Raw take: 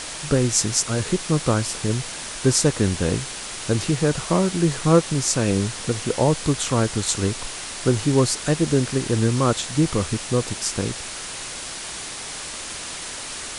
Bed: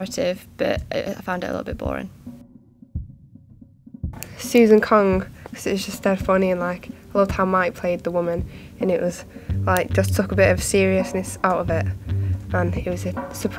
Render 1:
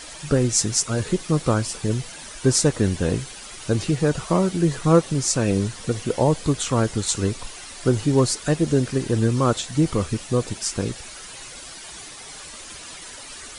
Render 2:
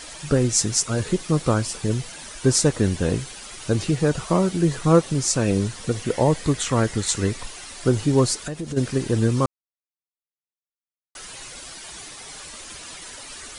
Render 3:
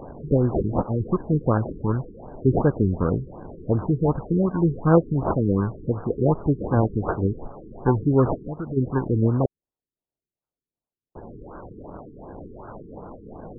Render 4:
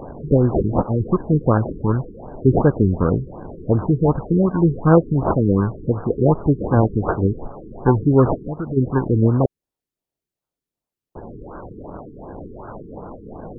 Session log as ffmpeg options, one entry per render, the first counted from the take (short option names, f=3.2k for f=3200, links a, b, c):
-af "afftdn=nr=10:nf=-33"
-filter_complex "[0:a]asettb=1/sr,asplit=3[a][b][c];[a]atrim=end=6.044[d];[b]atrim=start=6.04:end=7.45,asetpts=PTS-STARTPTS,afade=t=in:d=0.004:c=qsin,afade=t=out:st=1.406:d=0.004:c=qsin,equalizer=f=1.9k:w=3.7:g=7[e];[c]atrim=start=7.446[f];[d][e]acrossfade=d=0.004:c1=hsin:c2=qsin[g];[g][f]acrossfade=d=0.004:c1=qsin:c2=hsin,asplit=3[h][i][j];[h]afade=t=out:st=8.36:d=0.02[k];[i]acompressor=threshold=-27dB:ratio=5:attack=3.2:release=140:knee=1:detection=peak,afade=t=in:st=8.36:d=0.02,afade=t=out:st=8.76:d=0.02[l];[j]afade=t=in:st=8.76:d=0.02[m];[k][l][m]amix=inputs=3:normalize=0,asplit=3[n][o][p];[n]atrim=end=9.46,asetpts=PTS-STARTPTS,afade=t=out:st=9.456:d=0.004:c=hsin[q];[o]atrim=start=9.46:end=11.15,asetpts=PTS-STARTPTS,volume=0[r];[p]atrim=start=11.15,asetpts=PTS-STARTPTS,afade=t=in:d=0.004:c=hsin[s];[q][r][s]concat=n=3:v=0:a=1"
-af "acrusher=samples=27:mix=1:aa=0.000001:lfo=1:lforange=16.2:lforate=1.8,afftfilt=real='re*lt(b*sr/1024,450*pow(1700/450,0.5+0.5*sin(2*PI*2.7*pts/sr)))':imag='im*lt(b*sr/1024,450*pow(1700/450,0.5+0.5*sin(2*PI*2.7*pts/sr)))':win_size=1024:overlap=0.75"
-af "volume=4.5dB,alimiter=limit=-1dB:level=0:latency=1"